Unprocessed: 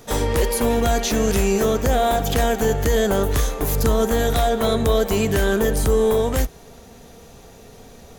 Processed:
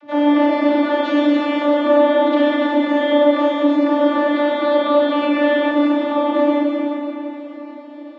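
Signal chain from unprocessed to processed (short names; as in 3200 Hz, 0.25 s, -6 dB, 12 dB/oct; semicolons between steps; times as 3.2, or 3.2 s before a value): LPF 3200 Hz 24 dB/oct; vocoder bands 32, saw 293 Hz; Schroeder reverb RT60 3.7 s, combs from 31 ms, DRR -8 dB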